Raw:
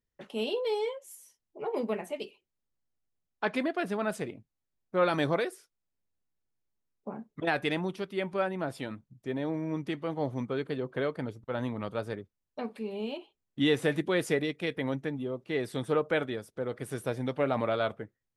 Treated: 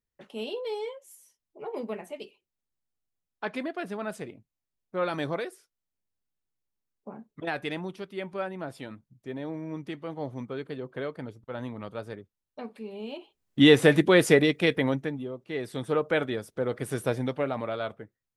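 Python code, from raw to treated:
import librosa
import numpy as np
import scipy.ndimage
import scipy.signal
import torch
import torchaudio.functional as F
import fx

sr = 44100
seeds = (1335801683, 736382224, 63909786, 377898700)

y = fx.gain(x, sr, db=fx.line((13.04, -3.0), (13.6, 9.0), (14.7, 9.0), (15.37, -3.0), (16.48, 5.0), (17.14, 5.0), (17.57, -3.0)))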